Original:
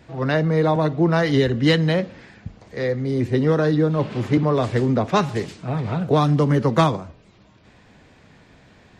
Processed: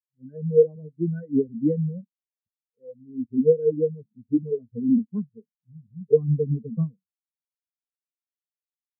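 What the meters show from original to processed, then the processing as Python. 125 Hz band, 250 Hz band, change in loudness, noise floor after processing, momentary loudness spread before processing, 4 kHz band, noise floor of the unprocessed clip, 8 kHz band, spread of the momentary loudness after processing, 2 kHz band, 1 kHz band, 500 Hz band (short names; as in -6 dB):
-9.0 dB, -5.0 dB, -4.5 dB, under -85 dBFS, 9 LU, under -40 dB, -53 dBFS, n/a, 16 LU, under -30 dB, under -40 dB, -2.5 dB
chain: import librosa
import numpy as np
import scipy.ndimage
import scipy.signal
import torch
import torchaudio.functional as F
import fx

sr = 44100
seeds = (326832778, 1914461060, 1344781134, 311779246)

y = fx.peak_eq(x, sr, hz=630.0, db=-4.0, octaves=1.5)
y = fx.small_body(y, sr, hz=(230.0, 450.0, 1500.0), ring_ms=45, db=9)
y = fx.spectral_expand(y, sr, expansion=4.0)
y = y * 10.0 ** (-3.0 / 20.0)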